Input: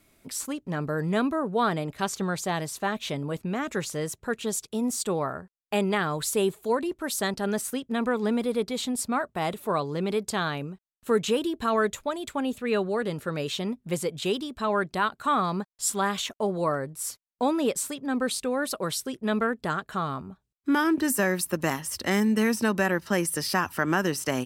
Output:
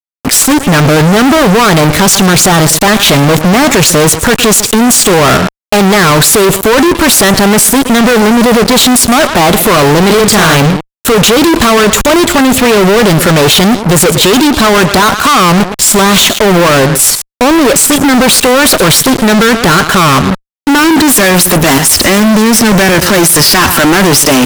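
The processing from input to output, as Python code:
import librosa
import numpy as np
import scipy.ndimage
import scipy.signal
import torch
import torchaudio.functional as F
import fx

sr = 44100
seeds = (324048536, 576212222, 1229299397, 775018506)

y = fx.doubler(x, sr, ms=43.0, db=-4.5, at=(10.09, 10.56), fade=0.02)
y = fx.level_steps(y, sr, step_db=18)
y = fx.echo_feedback(y, sr, ms=117, feedback_pct=17, wet_db=-23.0)
y = fx.fuzz(y, sr, gain_db=61.0, gate_db=-57.0)
y = y * 10.0 ** (8.5 / 20.0)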